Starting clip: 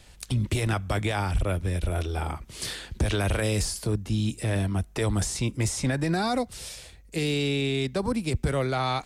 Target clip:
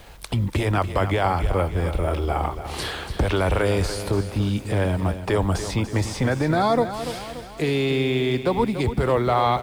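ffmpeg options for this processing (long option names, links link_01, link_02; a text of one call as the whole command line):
ffmpeg -i in.wav -filter_complex "[0:a]equalizer=frequency=500:width_type=o:width=1:gain=4,equalizer=frequency=1000:width_type=o:width=1:gain=8,equalizer=frequency=8000:width_type=o:width=1:gain=-10,asplit=2[link_01][link_02];[link_02]acompressor=threshold=-34dB:ratio=6,volume=1dB[link_03];[link_01][link_03]amix=inputs=2:normalize=0,asetrate=41454,aresample=44100,acrusher=bits=8:mix=0:aa=0.000001,asplit=2[link_04][link_05];[link_05]aecho=0:1:289|578|867|1156|1445|1734:0.282|0.147|0.0762|0.0396|0.0206|0.0107[link_06];[link_04][link_06]amix=inputs=2:normalize=0" out.wav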